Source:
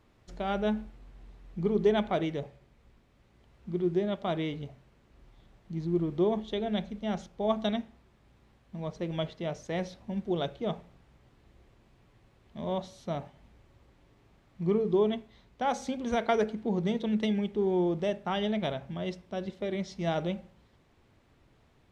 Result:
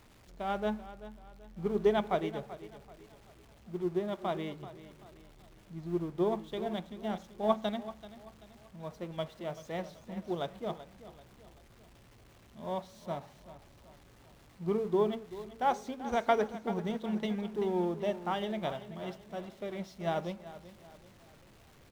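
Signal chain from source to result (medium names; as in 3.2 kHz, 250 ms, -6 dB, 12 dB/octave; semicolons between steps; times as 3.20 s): jump at every zero crossing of -42 dBFS; dynamic bell 980 Hz, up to +6 dB, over -44 dBFS, Q 1; feedback delay 385 ms, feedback 45%, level -10.5 dB; upward expansion 1.5:1, over -37 dBFS; trim -3 dB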